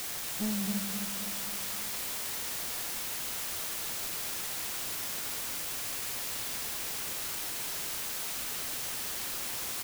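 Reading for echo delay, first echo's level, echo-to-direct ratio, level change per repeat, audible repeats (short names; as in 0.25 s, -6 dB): 0.26 s, -6.5 dB, -5.0 dB, -5.5 dB, 4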